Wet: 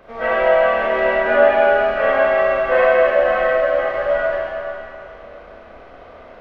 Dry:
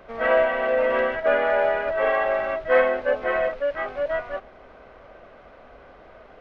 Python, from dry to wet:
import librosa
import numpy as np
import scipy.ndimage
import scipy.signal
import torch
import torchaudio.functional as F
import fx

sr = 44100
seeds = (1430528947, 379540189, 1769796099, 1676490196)

y = fx.rev_schroeder(x, sr, rt60_s=2.6, comb_ms=26, drr_db=-5.5)